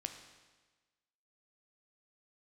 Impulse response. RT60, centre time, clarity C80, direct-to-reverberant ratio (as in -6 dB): 1.3 s, 22 ms, 9.5 dB, 5.5 dB